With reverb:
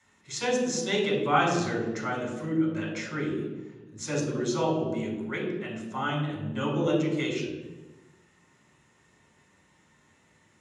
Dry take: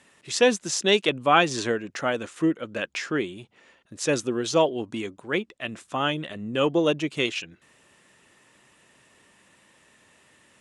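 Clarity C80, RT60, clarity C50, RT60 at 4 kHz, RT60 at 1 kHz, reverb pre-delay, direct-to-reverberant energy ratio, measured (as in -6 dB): 6.0 dB, 1.2 s, 4.0 dB, 0.80 s, 1.1 s, 3 ms, -3.5 dB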